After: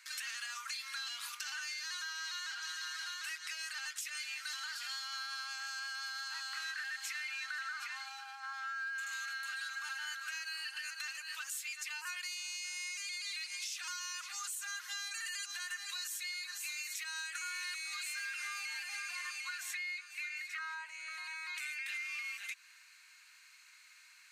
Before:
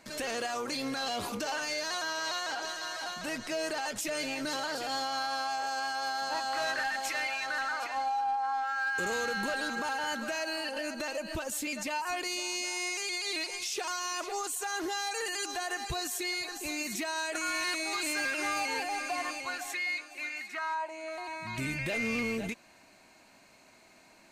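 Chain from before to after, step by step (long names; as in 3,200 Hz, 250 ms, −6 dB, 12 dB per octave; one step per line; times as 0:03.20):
Butterworth high-pass 1,300 Hz 36 dB per octave
downward compressor, threshold −40 dBFS, peak gain reduction 10 dB
level +1.5 dB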